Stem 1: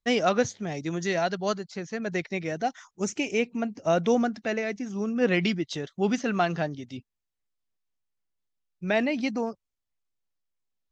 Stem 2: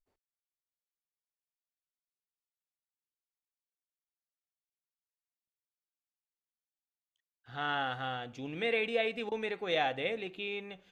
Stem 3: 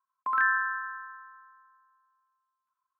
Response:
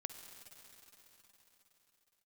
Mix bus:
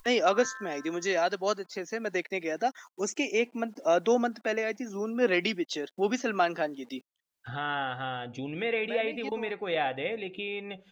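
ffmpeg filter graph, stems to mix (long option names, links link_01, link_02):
-filter_complex "[0:a]acontrast=65,acrusher=bits=7:mix=0:aa=0.000001,highpass=frequency=260:width=0.5412,highpass=frequency=260:width=1.3066,volume=-6.5dB[link_01];[1:a]acrossover=split=3100[link_02][link_03];[link_03]acompressor=threshold=-47dB:ratio=4:attack=1:release=60[link_04];[link_02][link_04]amix=inputs=2:normalize=0,volume=2dB,asplit=2[link_05][link_06];[2:a]volume=-15.5dB[link_07];[link_06]apad=whole_len=481481[link_08];[link_01][link_08]sidechaincompress=threshold=-43dB:ratio=4:attack=16:release=459[link_09];[link_09][link_05][link_07]amix=inputs=3:normalize=0,afftdn=noise_reduction=12:noise_floor=-52,acompressor=mode=upward:threshold=-30dB:ratio=2.5"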